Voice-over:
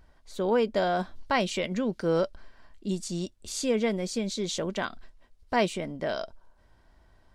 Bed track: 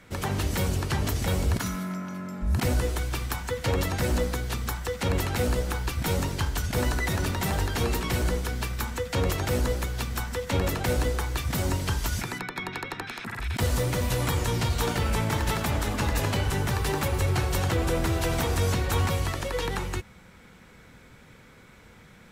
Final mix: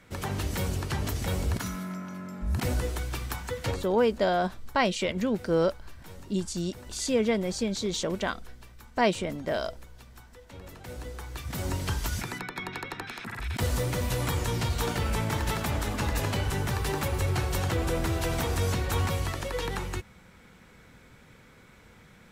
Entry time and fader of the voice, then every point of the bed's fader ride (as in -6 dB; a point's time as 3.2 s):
3.45 s, +1.0 dB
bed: 3.7 s -3.5 dB
3.9 s -20.5 dB
10.56 s -20.5 dB
11.82 s -2.5 dB